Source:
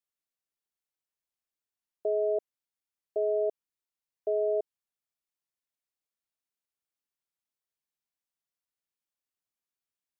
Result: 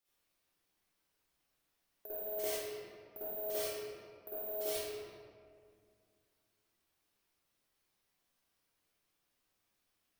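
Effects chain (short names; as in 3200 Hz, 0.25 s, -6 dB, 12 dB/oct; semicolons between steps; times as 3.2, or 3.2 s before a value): zero-crossing step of -40 dBFS; reverb removal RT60 0.53 s; gate -42 dBFS, range -44 dB; reverb removal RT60 1 s; limiter -32.5 dBFS, peak gain reduction 12 dB; negative-ratio compressor -45 dBFS, ratio -0.5; soft clip -39 dBFS, distortion -19 dB; careless resampling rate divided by 3×, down filtered, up zero stuff; reverb RT60 2.2 s, pre-delay 47 ms, DRR -13 dB; gain -3 dB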